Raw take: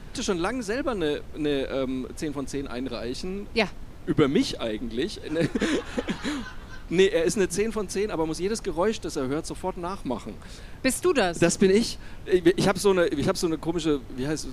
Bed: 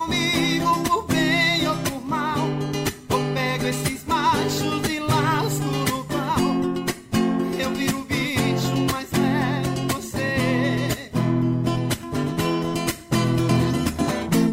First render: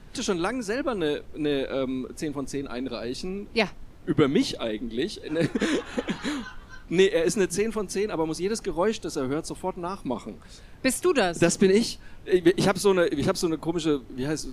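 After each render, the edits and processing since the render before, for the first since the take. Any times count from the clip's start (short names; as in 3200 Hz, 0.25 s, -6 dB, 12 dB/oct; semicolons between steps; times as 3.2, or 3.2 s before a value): noise print and reduce 6 dB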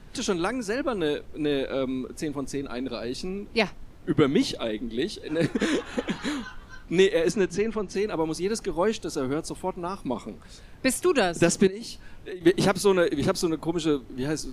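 7.31–7.95 air absorption 99 m; 11.67–12.41 compressor 16:1, threshold -32 dBFS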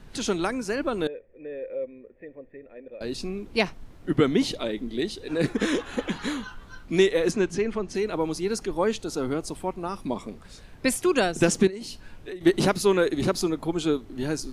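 1.07–3.01 vocal tract filter e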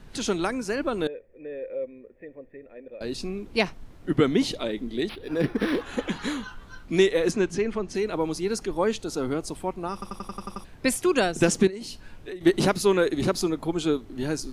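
5.09–5.82 decimation joined by straight lines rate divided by 6×; 9.93 stutter in place 0.09 s, 8 plays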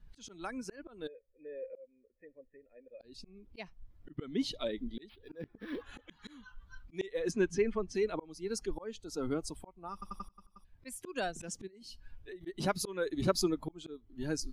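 per-bin expansion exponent 1.5; auto swell 0.495 s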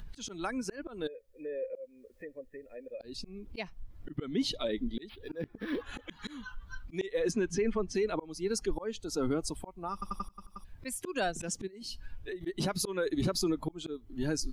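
in parallel at -1.5 dB: upward compressor, threshold -36 dBFS; on the sum: limiter -22 dBFS, peak gain reduction 11.5 dB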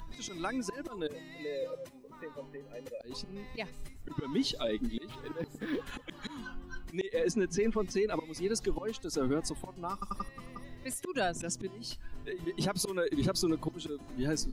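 add bed -29.5 dB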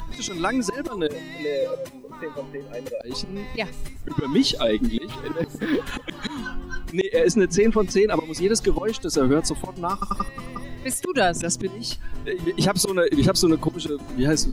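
gain +12 dB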